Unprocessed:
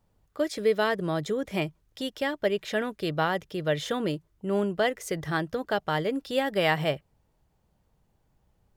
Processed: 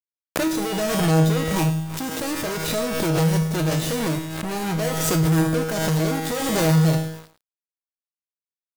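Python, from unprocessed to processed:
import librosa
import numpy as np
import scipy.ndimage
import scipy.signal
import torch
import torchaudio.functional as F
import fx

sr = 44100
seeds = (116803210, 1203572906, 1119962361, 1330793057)

y = scipy.signal.medfilt(x, 41)
y = fx.bass_treble(y, sr, bass_db=3, treble_db=15)
y = fx.fuzz(y, sr, gain_db=52.0, gate_db=-52.0)
y = fx.dmg_buzz(y, sr, base_hz=100.0, harmonics=16, level_db=-38.0, tilt_db=-5, odd_only=False)
y = fx.comb_fb(y, sr, f0_hz=160.0, decay_s=0.83, harmonics='all', damping=0.0, mix_pct=90)
y = np.where(np.abs(y) >= 10.0 ** (-40.0 / 20.0), y, 0.0)
y = y + 10.0 ** (-13.5 / 20.0) * np.pad(y, (int(107 * sr / 1000.0), 0))[:len(y)]
y = fx.pre_swell(y, sr, db_per_s=29.0)
y = y * librosa.db_to_amplitude(4.0)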